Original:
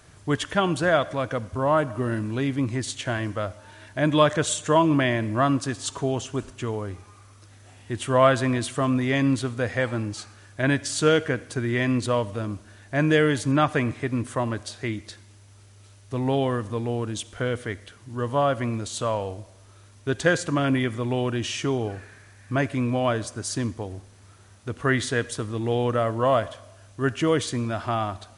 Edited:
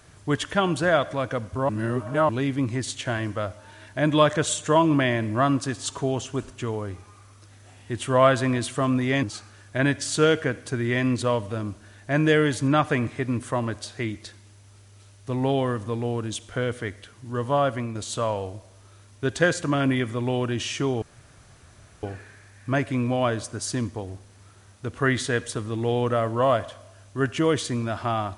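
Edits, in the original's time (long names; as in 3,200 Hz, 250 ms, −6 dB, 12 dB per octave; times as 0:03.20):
0:01.69–0:02.29: reverse
0:09.23–0:10.07: remove
0:18.52–0:18.79: fade out, to −6 dB
0:21.86: splice in room tone 1.01 s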